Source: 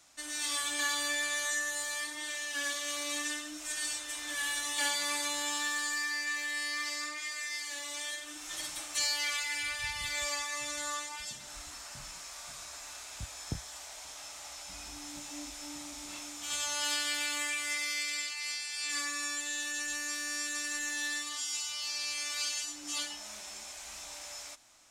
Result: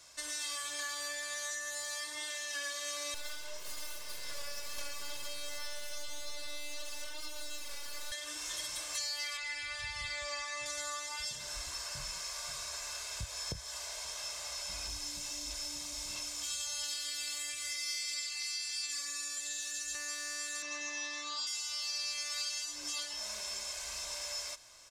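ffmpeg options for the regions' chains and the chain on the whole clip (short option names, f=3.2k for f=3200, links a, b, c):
-filter_complex "[0:a]asettb=1/sr,asplit=3[a][b][c];[a]atrim=end=3.144[d];[b]atrim=start=3.14:end=8.12,asetpts=PTS-STARTPTS,afade=t=in:d=0.004:c=qsin,afade=t=out:st=4.976:d=0.004:c=qsin,lowpass=f=3.8k:p=1,bandreject=f=1.9k:w=7.8,aeval=exprs='abs(val(0))':c=same[e];[c]atrim=start=8.116[f];[d][e]acrossfade=d=0.004:c1=hsin:c2=qsin[g];[g][f]acrossfade=d=0.004:c1=qsin:c2=hsin,asettb=1/sr,asplit=3[h][i][j];[h]atrim=end=9.374[k];[i]atrim=start=9.37:end=10.66,asetpts=PTS-STARTPTS,afade=t=in:d=0.004:c=qsin,afade=t=out:st=1.286:d=0.004:c=qsin,lowpass=f=10k:w=0.5412,lowpass=f=10k:w=1.3066,acrossover=split=4500[l][m];[m]acompressor=threshold=-46dB:ratio=4:attack=1:release=60[n];[l][n]amix=inputs=2:normalize=0[o];[j]atrim=start=10.656[p];[k][o]acrossfade=d=0.004:c1=hsin:c2=qsin[q];[q][p]acrossfade=d=0.004:c1=qsin:c2=hsin,asettb=1/sr,asplit=3[r][s][t];[r]atrim=end=14.854[u];[s]atrim=start=14.85:end=19.95,asetpts=PTS-STARTPTS,afade=t=in:d=0.004:c=qsin,afade=t=out:st=5.096:d=0.004:c=qsin,acrossover=split=240|3000[v][w][x];[w]acompressor=threshold=-53dB:ratio=2.5:attack=3.2:release=140:knee=2.83:detection=peak[y];[v][y][x]amix=inputs=3:normalize=0,aphaser=in_gain=1:out_gain=1:delay=4.2:decay=0.27:speed=1.5:type=sinusoidal[z];[t]atrim=start=19.946[aa];[u][z]acrossfade=d=0.004:c1=hsin:c2=qsin[ab];[ab][aa]acrossfade=d=0.004:c1=qsin:c2=hsin,asettb=1/sr,asplit=3[ac][ad][ae];[ac]atrim=end=20.624[af];[ad]atrim=start=20.62:end=21.47,asetpts=PTS-STARTPTS,afade=t=in:d=0.004:c=qsin,afade=t=out:st=0.846:d=0.004:c=qsin,highpass=110,equalizer=f=170:t=q:w=4:g=6,equalizer=f=1.1k:t=q:w=4:g=7,equalizer=f=3.2k:t=q:w=4:g=-8,lowpass=f=5.6k:w=0.5412,lowpass=f=5.6k:w=1.3066,aecho=1:1:6.5:1,atrim=end_sample=37485[ag];[ae]atrim=start=21.466[ah];[af][ag]acrossfade=d=0.004:c1=hsin:c2=qsin[ai];[ai][ah]acrossfade=d=0.004:c1=qsin:c2=hsin,acompressor=threshold=-41dB:ratio=5,equalizer=f=5k:w=2.8:g=4.5,aecho=1:1:1.9:0.59,volume=2dB"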